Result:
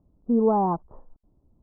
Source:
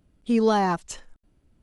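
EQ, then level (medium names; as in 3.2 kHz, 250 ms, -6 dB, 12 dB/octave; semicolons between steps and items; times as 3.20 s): steep low-pass 1.1 kHz 48 dB/octave; 0.0 dB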